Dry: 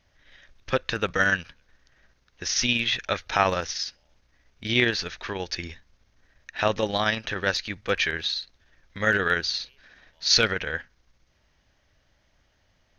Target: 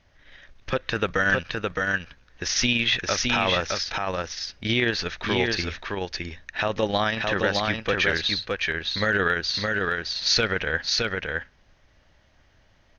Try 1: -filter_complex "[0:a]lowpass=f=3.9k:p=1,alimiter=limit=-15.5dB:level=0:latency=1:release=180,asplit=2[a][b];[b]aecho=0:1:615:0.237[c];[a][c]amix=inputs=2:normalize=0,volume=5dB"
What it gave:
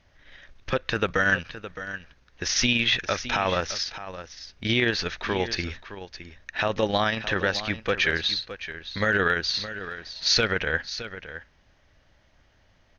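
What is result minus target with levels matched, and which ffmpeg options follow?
echo-to-direct -9.5 dB
-filter_complex "[0:a]lowpass=f=3.9k:p=1,alimiter=limit=-15.5dB:level=0:latency=1:release=180,asplit=2[a][b];[b]aecho=0:1:615:0.708[c];[a][c]amix=inputs=2:normalize=0,volume=5dB"

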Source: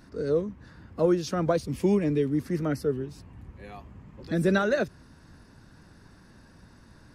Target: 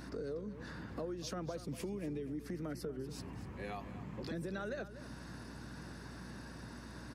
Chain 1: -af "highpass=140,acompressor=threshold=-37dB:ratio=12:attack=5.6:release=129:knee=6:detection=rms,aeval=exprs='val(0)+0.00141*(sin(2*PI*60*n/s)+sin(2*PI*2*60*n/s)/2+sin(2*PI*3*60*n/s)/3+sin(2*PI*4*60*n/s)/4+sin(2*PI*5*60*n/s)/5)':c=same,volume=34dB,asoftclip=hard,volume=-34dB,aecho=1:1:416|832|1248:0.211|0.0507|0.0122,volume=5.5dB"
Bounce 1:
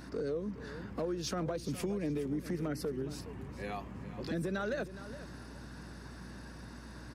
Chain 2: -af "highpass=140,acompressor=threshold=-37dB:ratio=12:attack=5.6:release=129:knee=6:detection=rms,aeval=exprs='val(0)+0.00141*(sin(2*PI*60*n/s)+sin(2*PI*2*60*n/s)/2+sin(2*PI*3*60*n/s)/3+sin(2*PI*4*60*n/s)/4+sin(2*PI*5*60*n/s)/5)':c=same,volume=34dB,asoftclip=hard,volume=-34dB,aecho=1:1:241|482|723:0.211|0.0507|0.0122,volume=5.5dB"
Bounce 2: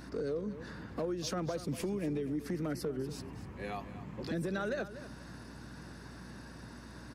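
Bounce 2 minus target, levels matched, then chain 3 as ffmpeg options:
compressor: peak gain reduction -6 dB
-af "highpass=140,acompressor=threshold=-43.5dB:ratio=12:attack=5.6:release=129:knee=6:detection=rms,aeval=exprs='val(0)+0.00141*(sin(2*PI*60*n/s)+sin(2*PI*2*60*n/s)/2+sin(2*PI*3*60*n/s)/3+sin(2*PI*4*60*n/s)/4+sin(2*PI*5*60*n/s)/5)':c=same,volume=34dB,asoftclip=hard,volume=-34dB,aecho=1:1:241|482|723:0.211|0.0507|0.0122,volume=5.5dB"

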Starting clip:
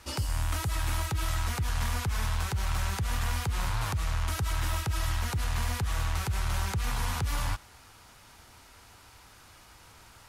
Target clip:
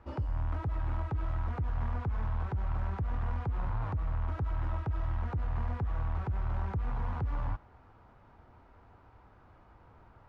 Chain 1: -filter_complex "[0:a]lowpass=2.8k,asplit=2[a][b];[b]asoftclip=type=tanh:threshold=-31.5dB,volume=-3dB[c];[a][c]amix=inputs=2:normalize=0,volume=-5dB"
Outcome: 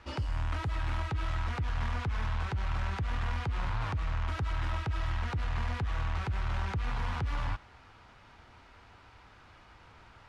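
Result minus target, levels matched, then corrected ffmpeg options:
2000 Hz band +8.5 dB
-filter_complex "[0:a]lowpass=980,asplit=2[a][b];[b]asoftclip=type=tanh:threshold=-31.5dB,volume=-3dB[c];[a][c]amix=inputs=2:normalize=0,volume=-5dB"

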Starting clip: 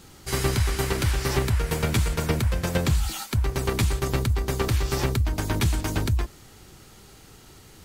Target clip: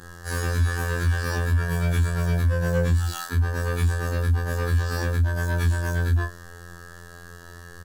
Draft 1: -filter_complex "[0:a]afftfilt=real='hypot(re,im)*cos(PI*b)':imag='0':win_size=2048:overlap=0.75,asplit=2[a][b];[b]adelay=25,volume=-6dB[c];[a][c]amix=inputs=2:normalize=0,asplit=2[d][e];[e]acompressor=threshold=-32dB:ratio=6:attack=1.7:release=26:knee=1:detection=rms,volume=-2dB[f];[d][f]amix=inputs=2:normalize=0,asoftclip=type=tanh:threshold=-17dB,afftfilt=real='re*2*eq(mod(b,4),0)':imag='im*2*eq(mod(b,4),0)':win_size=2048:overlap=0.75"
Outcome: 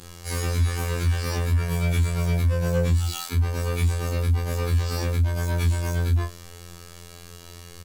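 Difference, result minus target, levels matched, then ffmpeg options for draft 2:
2000 Hz band -5.0 dB
-filter_complex "[0:a]afftfilt=real='hypot(re,im)*cos(PI*b)':imag='0':win_size=2048:overlap=0.75,asplit=2[a][b];[b]adelay=25,volume=-6dB[c];[a][c]amix=inputs=2:normalize=0,asplit=2[d][e];[e]acompressor=threshold=-32dB:ratio=6:attack=1.7:release=26:knee=1:detection=rms,lowpass=f=1.7k:t=q:w=8.9,volume=-2dB[f];[d][f]amix=inputs=2:normalize=0,asoftclip=type=tanh:threshold=-17dB,afftfilt=real='re*2*eq(mod(b,4),0)':imag='im*2*eq(mod(b,4),0)':win_size=2048:overlap=0.75"

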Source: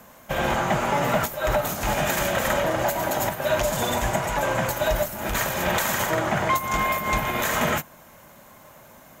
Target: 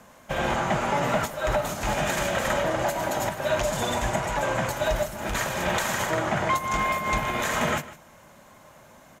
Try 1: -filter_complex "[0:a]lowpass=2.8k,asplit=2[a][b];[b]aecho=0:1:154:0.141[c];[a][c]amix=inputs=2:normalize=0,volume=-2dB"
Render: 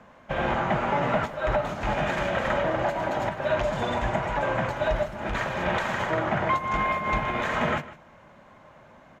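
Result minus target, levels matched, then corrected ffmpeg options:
8000 Hz band -15.5 dB
-filter_complex "[0:a]lowpass=9.9k,asplit=2[a][b];[b]aecho=0:1:154:0.141[c];[a][c]amix=inputs=2:normalize=0,volume=-2dB"

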